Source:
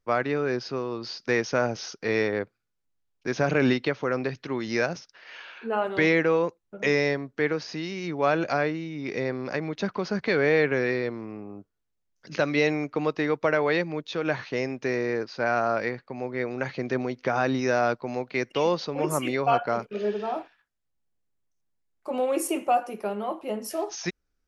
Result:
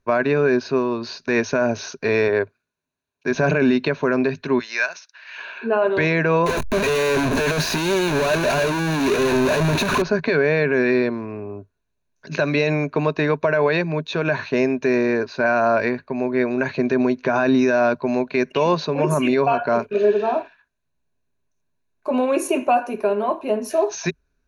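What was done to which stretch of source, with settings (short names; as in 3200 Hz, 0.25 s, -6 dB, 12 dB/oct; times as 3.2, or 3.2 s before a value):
2.28–3.31 HPF 180 Hz 6 dB/oct
4.59–5.38 HPF 1300 Hz
6.46–10.02 infinite clipping
whole clip: ripple EQ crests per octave 1.5, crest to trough 10 dB; limiter -16.5 dBFS; high shelf 5600 Hz -11.5 dB; gain +8 dB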